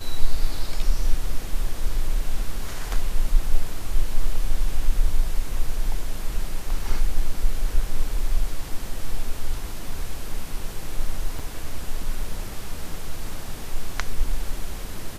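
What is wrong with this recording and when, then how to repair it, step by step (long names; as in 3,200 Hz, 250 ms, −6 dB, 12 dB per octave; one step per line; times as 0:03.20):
0:11.39–0:11.40: drop-out 5.7 ms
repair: repair the gap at 0:11.39, 5.7 ms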